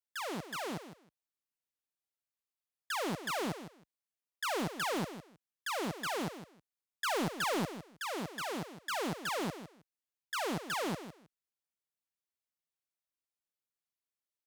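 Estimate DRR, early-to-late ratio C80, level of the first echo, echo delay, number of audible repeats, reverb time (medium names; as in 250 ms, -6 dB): no reverb, no reverb, -11.5 dB, 158 ms, 2, no reverb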